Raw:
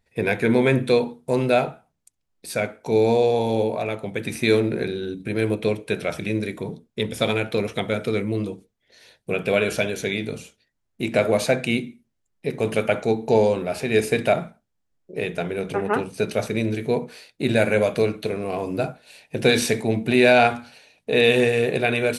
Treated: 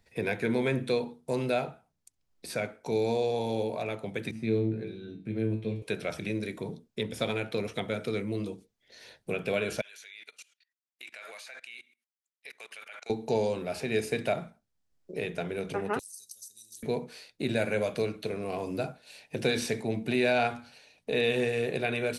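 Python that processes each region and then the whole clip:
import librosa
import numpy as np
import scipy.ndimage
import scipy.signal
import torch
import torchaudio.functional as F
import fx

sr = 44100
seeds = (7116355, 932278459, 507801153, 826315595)

y = fx.chain(x, sr, fx.lowpass(hz=2100.0, slope=6),
    fx.peak_eq(hz=160.0, db=11.0, octaves=2.1),
    fx.comb_fb(f0_hz=110.0, decay_s=0.37, harmonics='all', damping=0.0, mix_pct=90), at=(4.31, 5.82))
y = fx.chain(y, sr, fx.cheby1_highpass(hz=1800.0, order=2),
    fx.level_steps(step_db=22), at=(9.81, 13.1))
y = fx.chain(y, sr, fx.cheby2_highpass(hz=2400.0, order=4, stop_db=50),
    fx.high_shelf(hz=8200.0, db=9.5),
    fx.band_squash(depth_pct=100), at=(15.99, 16.83))
y = fx.peak_eq(y, sr, hz=5100.0, db=3.5, octaves=0.89)
y = fx.band_squash(y, sr, depth_pct=40)
y = y * librosa.db_to_amplitude(-9.0)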